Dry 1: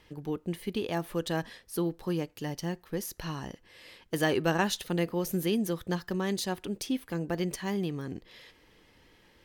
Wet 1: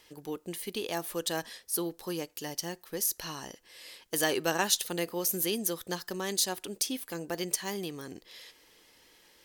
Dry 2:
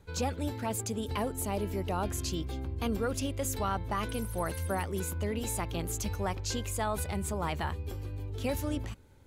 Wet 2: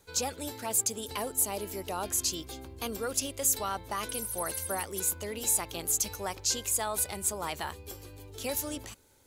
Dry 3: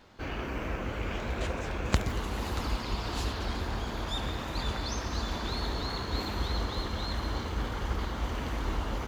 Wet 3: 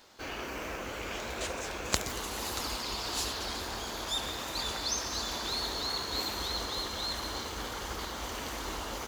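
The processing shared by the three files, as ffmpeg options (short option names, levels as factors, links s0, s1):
-af "bass=f=250:g=-11,treble=f=4000:g=12,volume=0.891"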